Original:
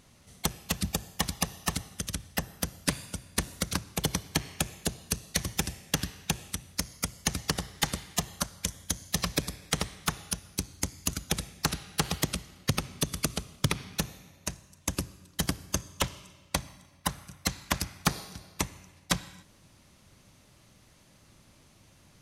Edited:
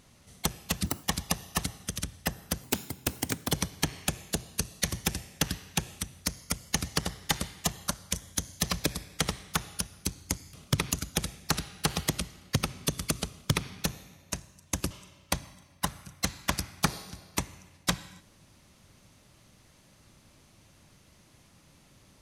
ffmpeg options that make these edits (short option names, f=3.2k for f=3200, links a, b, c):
-filter_complex "[0:a]asplit=8[a][b][c][d][e][f][g][h];[a]atrim=end=0.864[i];[b]atrim=start=0.86:end=1.15,asetpts=PTS-STARTPTS,asetrate=71883,aresample=44100,atrim=end_sample=7846,asetpts=PTS-STARTPTS[j];[c]atrim=start=1.146:end=2.754[k];[d]atrim=start=2.75:end=4.04,asetpts=PTS-STARTPTS,asetrate=64827,aresample=44100[l];[e]atrim=start=4.036:end=11.062[m];[f]atrim=start=13.448:end=13.832[n];[g]atrim=start=11.058:end=15.052[o];[h]atrim=start=16.128[p];[i][j]acrossfade=d=0.004:c1=hsin:c2=hsin[q];[q][k]acrossfade=d=0.004:c1=hsin:c2=hsin[r];[r][l]acrossfade=d=0.004:c1=hsin:c2=hsin[s];[s][m]acrossfade=d=0.004:c1=hsin:c2=hsin[t];[t][n]acrossfade=d=0.004:c1=hsin:c2=hsin[u];[u][o]acrossfade=d=0.004:c1=hsin:c2=hsin[v];[v][p]acrossfade=d=0.004:c1=hsin:c2=hsin"